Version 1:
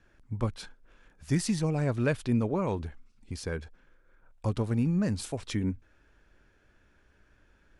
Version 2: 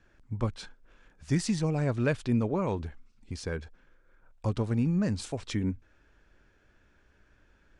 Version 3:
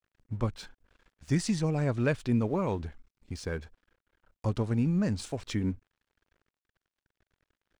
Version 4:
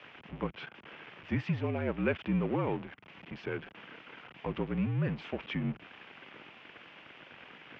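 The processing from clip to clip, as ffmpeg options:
ffmpeg -i in.wav -af "lowpass=frequency=8700:width=0.5412,lowpass=frequency=8700:width=1.3066" out.wav
ffmpeg -i in.wav -af "aeval=exprs='sgn(val(0))*max(abs(val(0))-0.00141,0)':channel_layout=same" out.wav
ffmpeg -i in.wav -af "aeval=exprs='val(0)+0.5*0.0237*sgn(val(0))':channel_layout=same,aexciter=amount=1.4:drive=2.1:freq=2200,highpass=frequency=180:width_type=q:width=0.5412,highpass=frequency=180:width_type=q:width=1.307,lowpass=frequency=3400:width_type=q:width=0.5176,lowpass=frequency=3400:width_type=q:width=0.7071,lowpass=frequency=3400:width_type=q:width=1.932,afreqshift=-50,volume=-3dB" out.wav

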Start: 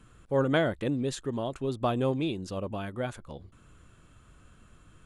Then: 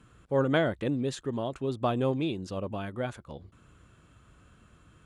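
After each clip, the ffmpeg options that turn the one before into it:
ffmpeg -i in.wav -af "highpass=47,highshelf=frequency=9000:gain=-8" out.wav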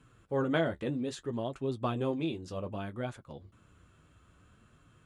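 ffmpeg -i in.wav -af "flanger=delay=7:depth=6.3:regen=-35:speed=0.62:shape=triangular" out.wav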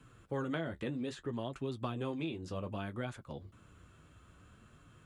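ffmpeg -i in.wav -filter_complex "[0:a]acrossover=split=360|990|2700[link_01][link_02][link_03][link_04];[link_01]acompressor=threshold=-40dB:ratio=4[link_05];[link_02]acompressor=threshold=-47dB:ratio=4[link_06];[link_03]acompressor=threshold=-46dB:ratio=4[link_07];[link_04]acompressor=threshold=-56dB:ratio=4[link_08];[link_05][link_06][link_07][link_08]amix=inputs=4:normalize=0,volume=2dB" out.wav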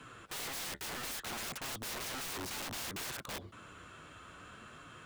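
ffmpeg -i in.wav -filter_complex "[0:a]asplit=2[link_01][link_02];[link_02]highpass=frequency=720:poles=1,volume=18dB,asoftclip=type=tanh:threshold=-21.5dB[link_03];[link_01][link_03]amix=inputs=2:normalize=0,lowpass=frequency=4700:poles=1,volume=-6dB,aeval=exprs='(mod(75*val(0)+1,2)-1)/75':channel_layout=same,volume=1.5dB" out.wav

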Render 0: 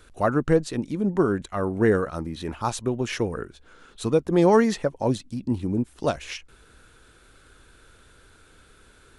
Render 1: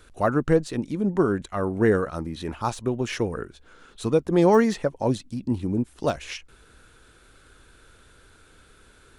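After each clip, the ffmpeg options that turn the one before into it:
ffmpeg -i in.wav -af "deesser=0.7" out.wav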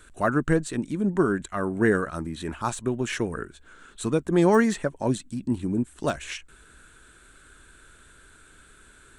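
ffmpeg -i in.wav -af "equalizer=frequency=100:width_type=o:width=0.33:gain=-7,equalizer=frequency=500:width_type=o:width=0.33:gain=-6,equalizer=frequency=800:width_type=o:width=0.33:gain=-4,equalizer=frequency=1600:width_type=o:width=0.33:gain=5,equalizer=frequency=5000:width_type=o:width=0.33:gain=-6,equalizer=frequency=8000:width_type=o:width=0.33:gain=10" out.wav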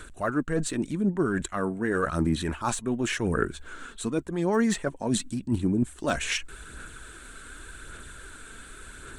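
ffmpeg -i in.wav -af "areverse,acompressor=threshold=-31dB:ratio=12,areverse,aphaser=in_gain=1:out_gain=1:delay=4.5:decay=0.35:speed=0.88:type=sinusoidal,volume=7.5dB" out.wav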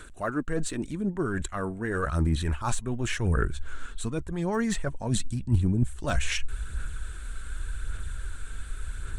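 ffmpeg -i in.wav -af "asubboost=boost=8:cutoff=99,volume=-2dB" out.wav

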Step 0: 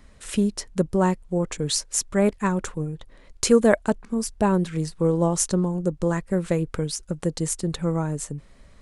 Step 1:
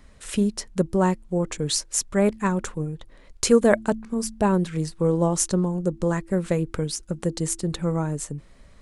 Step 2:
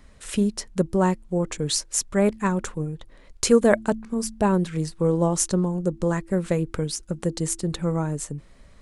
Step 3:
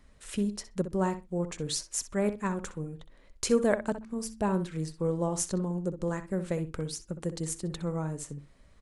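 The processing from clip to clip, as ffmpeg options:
ffmpeg -i in.wav -af "bandreject=frequency=110.3:width_type=h:width=4,bandreject=frequency=220.6:width_type=h:width=4,bandreject=frequency=330.9:width_type=h:width=4" out.wav
ffmpeg -i in.wav -af anull out.wav
ffmpeg -i in.wav -filter_complex "[0:a]asplit=2[link_01][link_02];[link_02]adelay=63,lowpass=frequency=3600:poles=1,volume=-10.5dB,asplit=2[link_03][link_04];[link_04]adelay=63,lowpass=frequency=3600:poles=1,volume=0.15[link_05];[link_01][link_03][link_05]amix=inputs=3:normalize=0,volume=-8dB" out.wav

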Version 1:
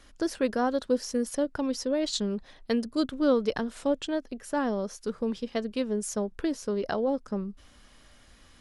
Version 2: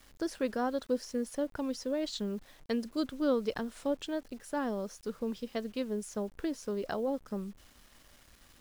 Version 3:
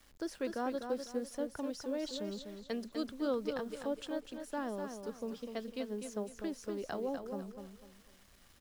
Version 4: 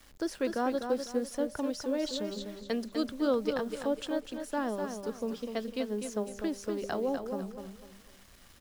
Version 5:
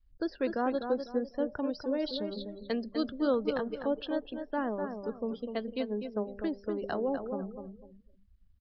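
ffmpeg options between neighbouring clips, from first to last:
ffmpeg -i in.wav -filter_complex "[0:a]acrossover=split=4200[link_01][link_02];[link_02]alimiter=level_in=7.5dB:limit=-24dB:level=0:latency=1:release=482,volume=-7.5dB[link_03];[link_01][link_03]amix=inputs=2:normalize=0,acrusher=bits=8:mix=0:aa=0.000001,volume=-5.5dB" out.wav
ffmpeg -i in.wav -filter_complex "[0:a]acrossover=split=260[link_01][link_02];[link_01]asoftclip=type=tanh:threshold=-39.5dB[link_03];[link_03][link_02]amix=inputs=2:normalize=0,aecho=1:1:249|498|747|996:0.447|0.143|0.0457|0.0146,volume=-4.5dB" out.wav
ffmpeg -i in.wav -af "bandreject=frequency=199.3:width_type=h:width=4,bandreject=frequency=398.6:width_type=h:width=4,bandreject=frequency=597.9:width_type=h:width=4,bandreject=frequency=797.2:width_type=h:width=4,volume=6dB" out.wav
ffmpeg -i in.wav -af "afftdn=noise_reduction=33:noise_floor=-47,aresample=11025,aresample=44100" out.wav

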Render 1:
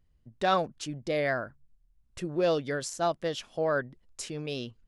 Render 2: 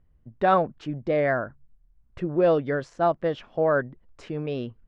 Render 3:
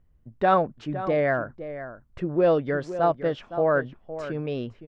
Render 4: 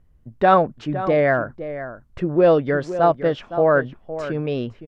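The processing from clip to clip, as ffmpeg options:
ffmpeg -i in.wav -af "lowpass=1700,volume=6dB" out.wav
ffmpeg -i in.wav -filter_complex "[0:a]asplit=2[link_01][link_02];[link_02]adelay=513.1,volume=-12dB,highshelf=frequency=4000:gain=-11.5[link_03];[link_01][link_03]amix=inputs=2:normalize=0" out.wav
ffmpeg -i in.wav -af "aresample=32000,aresample=44100,volume=5.5dB" out.wav

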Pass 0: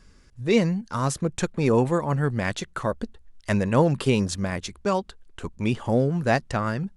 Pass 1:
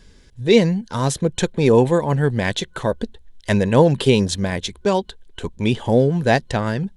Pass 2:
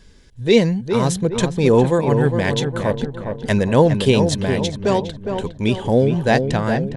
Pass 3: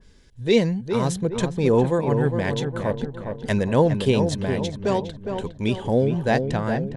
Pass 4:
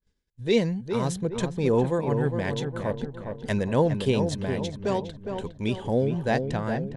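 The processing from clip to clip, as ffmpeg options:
ffmpeg -i in.wav -af "superequalizer=7b=1.41:10b=0.447:13b=2,volume=5dB" out.wav
ffmpeg -i in.wav -filter_complex "[0:a]asplit=2[link_01][link_02];[link_02]adelay=410,lowpass=frequency=1600:poles=1,volume=-6dB,asplit=2[link_03][link_04];[link_04]adelay=410,lowpass=frequency=1600:poles=1,volume=0.51,asplit=2[link_05][link_06];[link_06]adelay=410,lowpass=frequency=1600:poles=1,volume=0.51,asplit=2[link_07][link_08];[link_08]adelay=410,lowpass=frequency=1600:poles=1,volume=0.51,asplit=2[link_09][link_10];[link_10]adelay=410,lowpass=frequency=1600:poles=1,volume=0.51,asplit=2[link_11][link_12];[link_12]adelay=410,lowpass=frequency=1600:poles=1,volume=0.51[link_13];[link_01][link_03][link_05][link_07][link_09][link_11][link_13]amix=inputs=7:normalize=0" out.wav
ffmpeg -i in.wav -af "adynamicequalizer=threshold=0.0158:dfrequency=2100:dqfactor=0.7:tfrequency=2100:tqfactor=0.7:attack=5:release=100:ratio=0.375:range=2:mode=cutabove:tftype=highshelf,volume=-4.5dB" out.wav
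ffmpeg -i in.wav -af "agate=range=-33dB:threshold=-39dB:ratio=3:detection=peak,volume=-4dB" out.wav

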